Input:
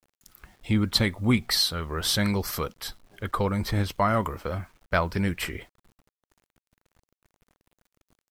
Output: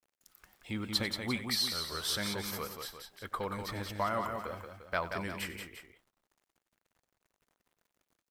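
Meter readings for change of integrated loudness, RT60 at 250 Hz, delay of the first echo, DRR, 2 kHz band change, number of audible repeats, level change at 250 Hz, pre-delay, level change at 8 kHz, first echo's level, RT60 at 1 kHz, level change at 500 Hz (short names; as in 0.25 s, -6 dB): -9.0 dB, none, 94 ms, none, -7.0 dB, 3, -12.5 dB, none, -7.0 dB, -16.0 dB, none, -9.0 dB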